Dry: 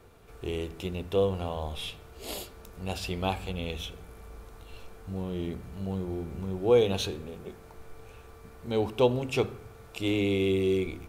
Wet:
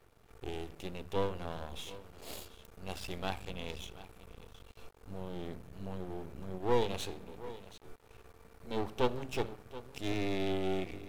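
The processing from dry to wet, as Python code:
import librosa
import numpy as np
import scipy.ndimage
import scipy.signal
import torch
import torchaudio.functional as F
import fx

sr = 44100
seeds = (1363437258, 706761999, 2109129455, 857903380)

y = x + 10.0 ** (-16.0 / 20.0) * np.pad(x, (int(727 * sr / 1000.0), 0))[:len(x)]
y = np.maximum(y, 0.0)
y = y * 10.0 ** (-4.0 / 20.0)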